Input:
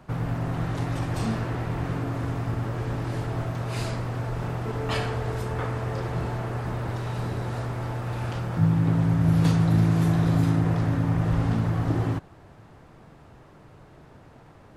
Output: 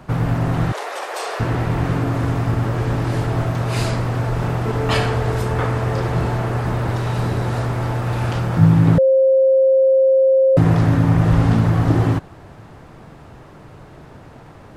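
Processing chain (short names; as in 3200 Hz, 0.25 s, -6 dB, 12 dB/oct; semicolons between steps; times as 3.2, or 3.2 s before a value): 0.72–1.4 steep high-pass 420 Hz 48 dB/oct; 8.98–10.57 bleep 531 Hz -19 dBFS; gain +9 dB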